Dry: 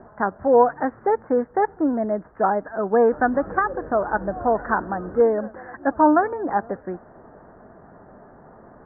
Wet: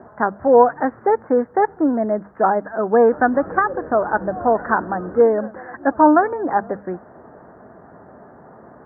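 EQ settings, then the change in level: HPF 76 Hz; notches 50/100/150/200 Hz; +3.5 dB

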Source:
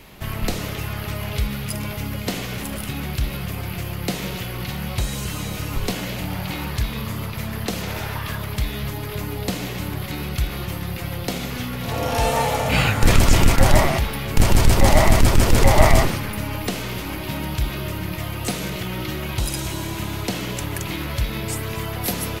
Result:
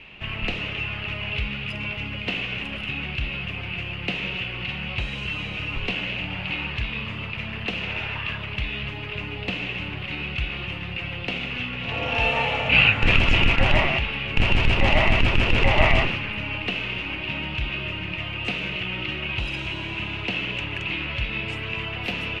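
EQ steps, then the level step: synth low-pass 2700 Hz, resonance Q 8; -6.0 dB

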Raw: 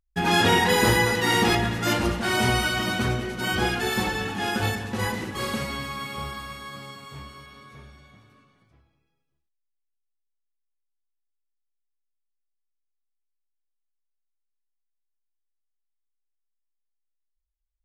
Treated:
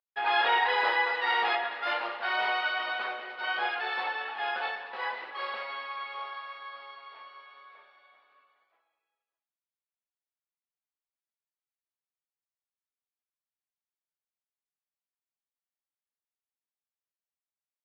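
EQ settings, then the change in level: HPF 630 Hz 24 dB/oct; air absorption 480 m; resonant high shelf 5800 Hz -8 dB, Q 3; 0.0 dB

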